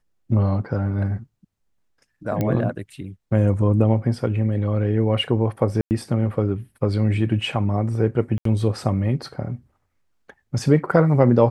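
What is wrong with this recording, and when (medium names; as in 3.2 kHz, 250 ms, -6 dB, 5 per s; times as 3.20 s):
2.41 s: pop -11 dBFS
5.81–5.91 s: dropout 99 ms
8.38–8.45 s: dropout 73 ms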